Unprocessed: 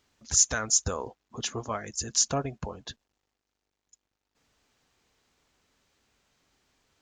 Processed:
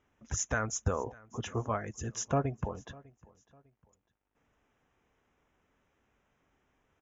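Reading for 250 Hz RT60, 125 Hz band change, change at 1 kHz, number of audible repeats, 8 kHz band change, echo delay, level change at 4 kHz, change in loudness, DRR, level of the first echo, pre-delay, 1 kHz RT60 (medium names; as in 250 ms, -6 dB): no reverb, +2.5 dB, -1.0 dB, 2, -13.5 dB, 601 ms, -15.0 dB, -8.0 dB, no reverb, -23.5 dB, no reverb, no reverb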